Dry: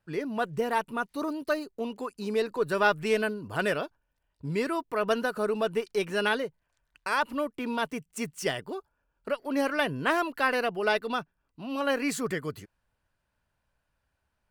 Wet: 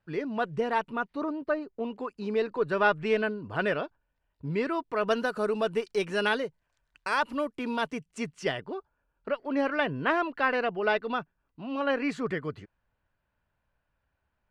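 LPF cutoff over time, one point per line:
0.84 s 4300 Hz
1.48 s 1700 Hz
2.11 s 3200 Hz
4.57 s 3200 Hz
5.29 s 8000 Hz
7.77 s 8000 Hz
8.73 s 3000 Hz

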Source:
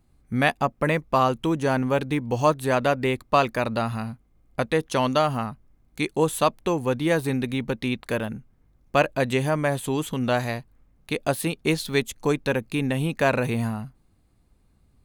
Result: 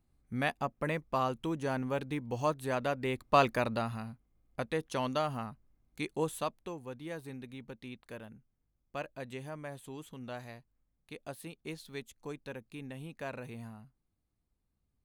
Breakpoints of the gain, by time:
3.02 s -11 dB
3.44 s -4 dB
4.03 s -11 dB
6.23 s -11 dB
6.83 s -19.5 dB

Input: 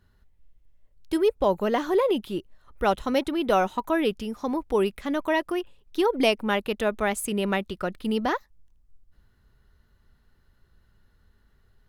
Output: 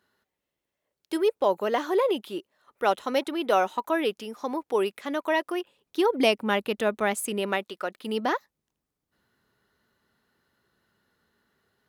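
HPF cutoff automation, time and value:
5.52 s 340 Hz
6.14 s 150 Hz
7 s 150 Hz
7.82 s 480 Hz
8.27 s 230 Hz

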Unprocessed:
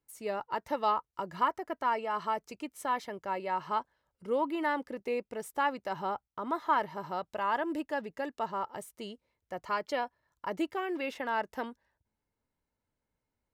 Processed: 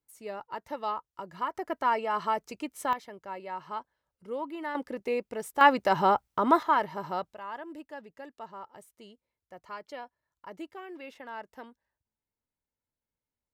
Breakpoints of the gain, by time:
-4 dB
from 1.55 s +3.5 dB
from 2.93 s -5 dB
from 4.75 s +3 dB
from 5.61 s +11 dB
from 6.63 s +3 dB
from 7.33 s -9 dB

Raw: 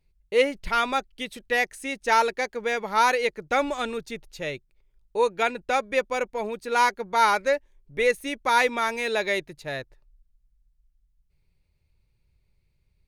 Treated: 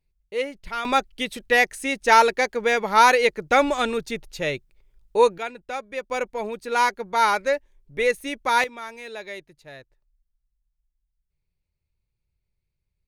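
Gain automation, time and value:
-6 dB
from 0.85 s +5.5 dB
from 5.38 s -7 dB
from 6.1 s +0.5 dB
from 8.64 s -10.5 dB

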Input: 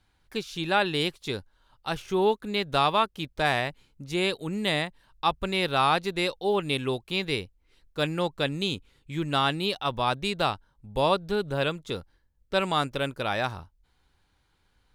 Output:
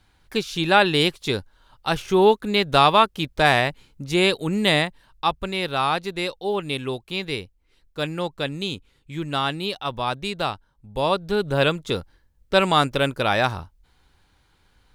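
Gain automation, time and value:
4.77 s +7.5 dB
5.54 s +0.5 dB
10.97 s +0.5 dB
11.62 s +7.5 dB

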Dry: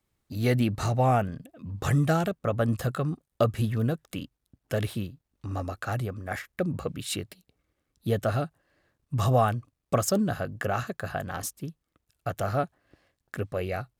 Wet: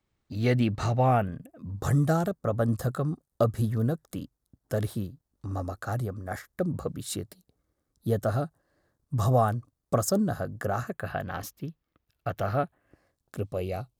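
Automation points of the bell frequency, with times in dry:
bell -13.5 dB 0.89 oct
0.89 s 12000 Hz
1.66 s 2600 Hz
10.76 s 2600 Hz
11.16 s 8500 Hz
12.48 s 8500 Hz
13.38 s 1700 Hz

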